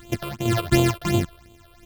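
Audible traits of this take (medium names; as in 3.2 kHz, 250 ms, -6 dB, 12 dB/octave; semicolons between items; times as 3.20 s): a buzz of ramps at a fixed pitch in blocks of 128 samples; phasing stages 8, 2.8 Hz, lowest notch 230–1700 Hz; random-step tremolo 4.4 Hz, depth 65%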